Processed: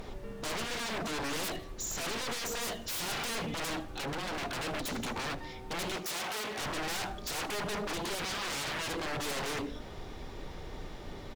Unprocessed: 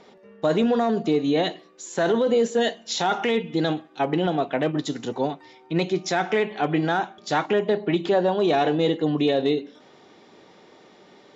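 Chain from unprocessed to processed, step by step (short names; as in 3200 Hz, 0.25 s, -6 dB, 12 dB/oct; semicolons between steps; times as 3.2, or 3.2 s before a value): added noise brown -45 dBFS; one-sided clip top -25 dBFS, bottom -14.5 dBFS; 3.86–4.43 compressor, threshold -27 dBFS, peak gain reduction 7 dB; 8.24–8.88 bell 610 Hz +8.5 dB 1.3 oct; limiter -17.5 dBFS, peak gain reduction 9 dB; wavefolder -34 dBFS; 5.96–6.58 HPF 360 Hz 6 dB/oct; feedback echo 79 ms, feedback 46%, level -20.5 dB; gain +3 dB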